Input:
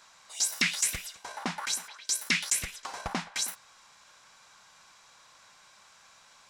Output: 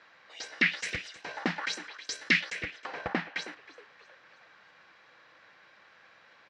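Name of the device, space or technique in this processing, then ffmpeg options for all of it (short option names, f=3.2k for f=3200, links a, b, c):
frequency-shifting delay pedal into a guitar cabinet: -filter_complex "[0:a]asplit=5[a][b][c][d][e];[b]adelay=316,afreqshift=120,volume=-20dB[f];[c]adelay=632,afreqshift=240,volume=-25.4dB[g];[d]adelay=948,afreqshift=360,volume=-30.7dB[h];[e]adelay=1264,afreqshift=480,volume=-36.1dB[i];[a][f][g][h][i]amix=inputs=5:normalize=0,highpass=87,equalizer=f=320:t=q:w=4:g=8,equalizer=f=490:t=q:w=4:g=8,equalizer=f=1k:t=q:w=4:g=-5,equalizer=f=1.8k:t=q:w=4:g=8,equalizer=f=3.6k:t=q:w=4:g=-4,lowpass=f=3.8k:w=0.5412,lowpass=f=3.8k:w=1.3066,asettb=1/sr,asplit=3[j][k][l];[j]atrim=end=0.834[m];[k]atrim=start=0.83:end=2.41,asetpts=PTS-STARTPTS,afade=t=in:d=0.004:c=qsin,afade=t=out:st=1.576:d=0.004:c=qsin,bass=f=250:g=3,treble=f=4k:g=10[n];[l]atrim=start=2.406[o];[m][n]acrossfade=d=0.004:c1=hsin:c2=qsin[p];[p][o]acrossfade=d=0.004:c1=qsin:c2=hsin"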